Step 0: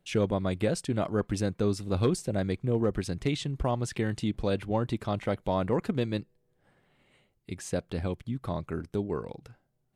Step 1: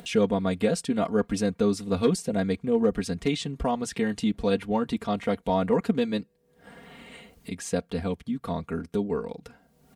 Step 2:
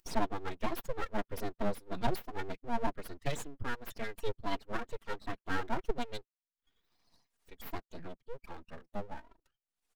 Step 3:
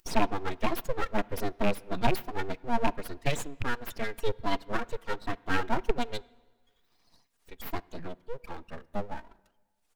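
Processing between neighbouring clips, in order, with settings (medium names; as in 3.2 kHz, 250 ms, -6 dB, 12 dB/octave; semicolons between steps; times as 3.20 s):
high-pass 56 Hz; comb 4.3 ms, depth 90%; upward compressor, threshold -33 dBFS; trim +1 dB
expander on every frequency bin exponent 2; full-wave rectifier; trim -2.5 dB
rattle on loud lows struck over -36 dBFS, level -27 dBFS; on a send at -22 dB: distance through air 82 m + reverberation RT60 1.4 s, pre-delay 23 ms; on the sum: trim +6 dB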